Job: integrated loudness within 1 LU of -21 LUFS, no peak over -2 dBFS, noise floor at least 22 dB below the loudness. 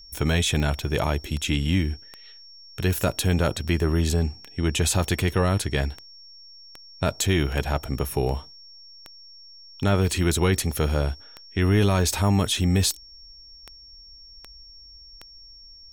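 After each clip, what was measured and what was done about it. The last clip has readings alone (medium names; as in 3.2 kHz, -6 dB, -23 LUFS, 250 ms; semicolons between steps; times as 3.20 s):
clicks found 20; steady tone 5.5 kHz; tone level -45 dBFS; loudness -24.0 LUFS; peak level -11.0 dBFS; loudness target -21.0 LUFS
-> de-click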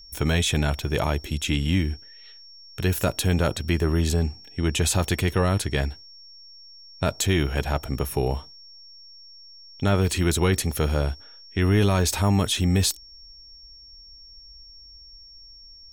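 clicks found 2; steady tone 5.5 kHz; tone level -45 dBFS
-> band-stop 5.5 kHz, Q 30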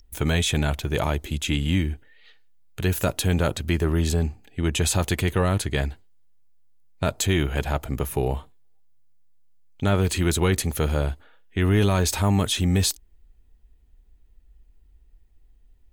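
steady tone not found; loudness -24.0 LUFS; peak level -10.5 dBFS; loudness target -21.0 LUFS
-> trim +3 dB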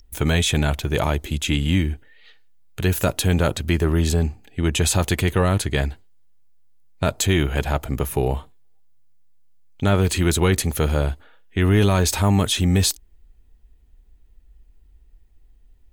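loudness -21.0 LUFS; peak level -7.5 dBFS; noise floor -54 dBFS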